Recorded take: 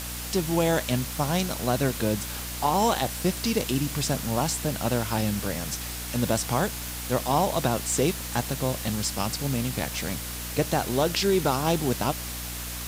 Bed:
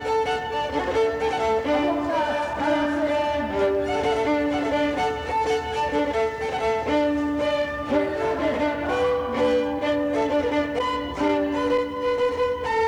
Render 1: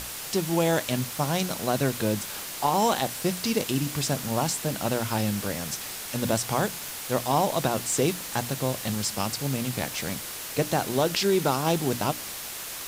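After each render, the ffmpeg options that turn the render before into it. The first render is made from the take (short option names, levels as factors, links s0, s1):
-af "bandreject=f=60:t=h:w=6,bandreject=f=120:t=h:w=6,bandreject=f=180:t=h:w=6,bandreject=f=240:t=h:w=6,bandreject=f=300:t=h:w=6"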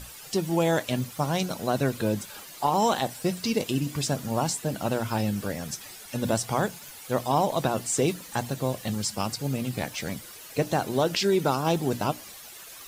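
-af "afftdn=nr=12:nf=-37"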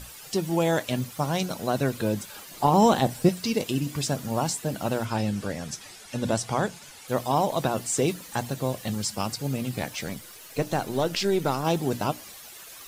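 -filter_complex "[0:a]asettb=1/sr,asplit=3[s0][s1][s2];[s0]atrim=end=2.514[s3];[s1]atrim=start=2.51:end=3.29,asetpts=PTS-STARTPTS,afade=t=in:d=0.004:c=qsin,afade=t=out:st=0.776:d=0.004:c=qsin,lowshelf=f=460:g=10.5[s4];[s2]atrim=start=3.286[s5];[s3][s4]acrossfade=d=0.004:c1=hsin:c2=qsin[s6];[s6][s5]acrossfade=d=0.004:c1=qsin:c2=hsin,asettb=1/sr,asplit=3[s7][s8][s9];[s7]atrim=end=5.054[s10];[s8]atrim=start=5.05:end=7.08,asetpts=PTS-STARTPTS,afade=t=in:d=0.004:c=qsin,afade=t=out:st=2.026:d=0.004:c=qsin,lowpass=9300[s11];[s9]atrim=start=7.076[s12];[s10][s11]acrossfade=d=0.004:c1=hsin:c2=qsin[s13];[s13][s12]acrossfade=d=0.004:c1=qsin:c2=hsin,asettb=1/sr,asplit=3[s14][s15][s16];[s14]atrim=end=10.064[s17];[s15]atrim=start=10.06:end=11.64,asetpts=PTS-STARTPTS,afade=t=in:d=0.004:c=qsin,afade=t=out:st=1.576:d=0.004:c=qsin,aeval=exprs='if(lt(val(0),0),0.708*val(0),val(0))':c=same[s18];[s16]atrim=start=11.636[s19];[s17][s18]acrossfade=d=0.004:c1=hsin:c2=qsin[s20];[s20][s19]acrossfade=d=0.004:c1=qsin:c2=hsin"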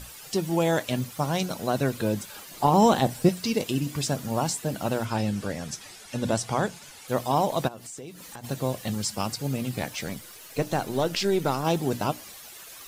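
-filter_complex "[0:a]asplit=3[s0][s1][s2];[s0]afade=t=out:st=7.67:d=0.02[s3];[s1]acompressor=threshold=0.0112:ratio=5:attack=3.2:release=140:knee=1:detection=peak,afade=t=in:st=7.67:d=0.02,afade=t=out:st=8.43:d=0.02[s4];[s2]afade=t=in:st=8.43:d=0.02[s5];[s3][s4][s5]amix=inputs=3:normalize=0"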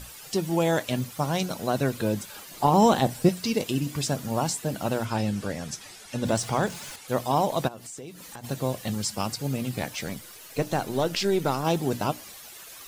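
-filter_complex "[0:a]asettb=1/sr,asplit=3[s0][s1][s2];[s0]atrim=end=6.254[s3];[s1]atrim=start=6.25:end=6.96,asetpts=PTS-STARTPTS,afade=t=in:d=0.004:c=qsin,afade=t=out:st=0.706:d=0.004:c=qsin,aeval=exprs='val(0)+0.5*0.0126*sgn(val(0))':c=same[s4];[s2]atrim=start=6.956[s5];[s3][s4]acrossfade=d=0.004:c1=hsin:c2=qsin[s6];[s6][s5]acrossfade=d=0.004:c1=qsin:c2=hsin"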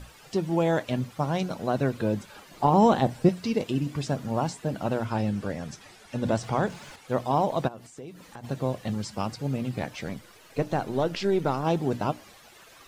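-filter_complex "[0:a]acrossover=split=8900[s0][s1];[s1]acompressor=threshold=0.00316:ratio=4:attack=1:release=60[s2];[s0][s2]amix=inputs=2:normalize=0,highshelf=f=3500:g=-12"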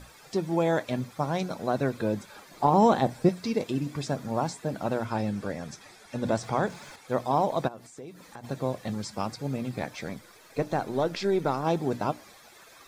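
-af "lowshelf=f=150:g=-6.5,bandreject=f=2900:w=6.7"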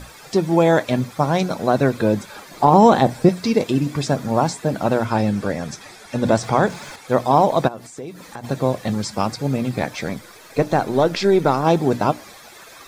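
-af "volume=3.16,alimiter=limit=0.708:level=0:latency=1"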